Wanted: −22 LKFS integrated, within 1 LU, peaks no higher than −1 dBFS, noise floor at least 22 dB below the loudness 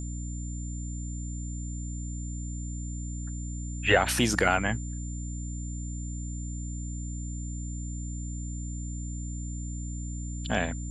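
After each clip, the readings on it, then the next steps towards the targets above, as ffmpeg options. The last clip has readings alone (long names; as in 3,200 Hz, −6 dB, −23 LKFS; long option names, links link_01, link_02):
mains hum 60 Hz; hum harmonics up to 300 Hz; level of the hum −33 dBFS; interfering tone 7,200 Hz; level of the tone −44 dBFS; integrated loudness −32.5 LKFS; sample peak −7.0 dBFS; target loudness −22.0 LKFS
→ -af "bandreject=frequency=60:width_type=h:width=6,bandreject=frequency=120:width_type=h:width=6,bandreject=frequency=180:width_type=h:width=6,bandreject=frequency=240:width_type=h:width=6,bandreject=frequency=300:width_type=h:width=6"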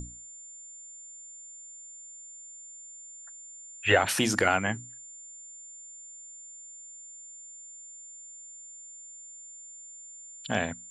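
mains hum none found; interfering tone 7,200 Hz; level of the tone −44 dBFS
→ -af "bandreject=frequency=7200:width=30"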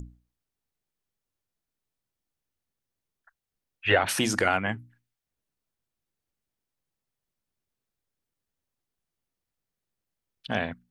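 interfering tone none found; integrated loudness −26.0 LKFS; sample peak −7.5 dBFS; target loudness −22.0 LKFS
→ -af "volume=4dB"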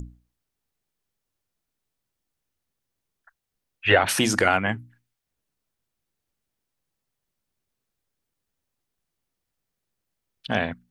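integrated loudness −22.0 LKFS; sample peak −3.5 dBFS; background noise floor −83 dBFS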